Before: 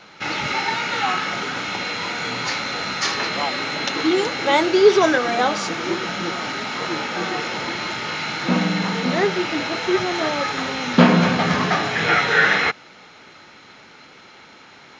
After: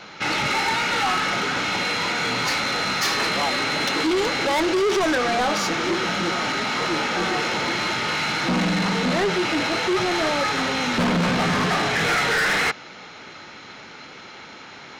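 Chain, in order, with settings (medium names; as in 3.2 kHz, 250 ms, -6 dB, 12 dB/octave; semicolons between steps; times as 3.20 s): in parallel at +3 dB: peak limiter -10 dBFS, peak gain reduction 8.5 dB; on the sum: saturation -15 dBFS, distortion -7 dB; trim -3 dB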